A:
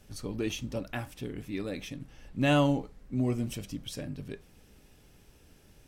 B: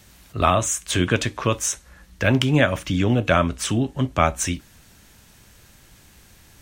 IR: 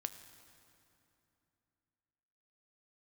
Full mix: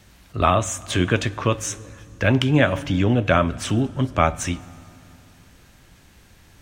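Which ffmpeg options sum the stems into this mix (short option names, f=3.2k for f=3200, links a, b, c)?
-filter_complex "[0:a]adelay=150,volume=-11.5dB[a];[1:a]highshelf=f=5.5k:g=-8.5,volume=-3dB,asplit=3[b][c][d];[c]volume=-3.5dB[e];[d]apad=whole_len=265892[f];[a][f]sidechaingate=range=-33dB:threshold=-52dB:ratio=16:detection=peak[g];[2:a]atrim=start_sample=2205[h];[e][h]afir=irnorm=-1:irlink=0[i];[g][b][i]amix=inputs=3:normalize=0"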